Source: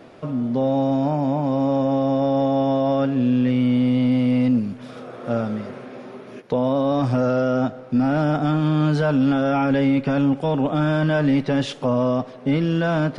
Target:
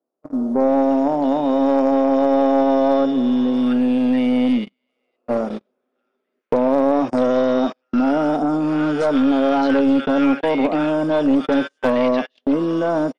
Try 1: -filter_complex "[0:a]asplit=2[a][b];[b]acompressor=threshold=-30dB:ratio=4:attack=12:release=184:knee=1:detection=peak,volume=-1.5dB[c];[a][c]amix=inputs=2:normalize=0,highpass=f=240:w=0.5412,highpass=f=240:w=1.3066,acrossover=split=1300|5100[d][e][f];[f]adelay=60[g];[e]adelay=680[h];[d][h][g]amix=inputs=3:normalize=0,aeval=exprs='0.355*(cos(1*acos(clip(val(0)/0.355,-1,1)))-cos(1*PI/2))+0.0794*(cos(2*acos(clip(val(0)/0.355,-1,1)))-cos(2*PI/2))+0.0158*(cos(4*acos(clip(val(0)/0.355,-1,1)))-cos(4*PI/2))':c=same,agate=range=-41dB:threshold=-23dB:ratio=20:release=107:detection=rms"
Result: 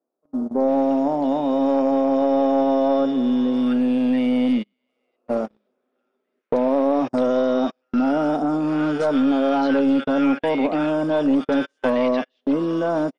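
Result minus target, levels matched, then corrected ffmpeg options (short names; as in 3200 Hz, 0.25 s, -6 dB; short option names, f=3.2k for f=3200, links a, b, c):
compressor: peak gain reduction +8 dB
-filter_complex "[0:a]asplit=2[a][b];[b]acompressor=threshold=-19.5dB:ratio=4:attack=12:release=184:knee=1:detection=peak,volume=-1.5dB[c];[a][c]amix=inputs=2:normalize=0,highpass=f=240:w=0.5412,highpass=f=240:w=1.3066,acrossover=split=1300|5100[d][e][f];[f]adelay=60[g];[e]adelay=680[h];[d][h][g]amix=inputs=3:normalize=0,aeval=exprs='0.355*(cos(1*acos(clip(val(0)/0.355,-1,1)))-cos(1*PI/2))+0.0794*(cos(2*acos(clip(val(0)/0.355,-1,1)))-cos(2*PI/2))+0.0158*(cos(4*acos(clip(val(0)/0.355,-1,1)))-cos(4*PI/2))':c=same,agate=range=-41dB:threshold=-23dB:ratio=20:release=107:detection=rms"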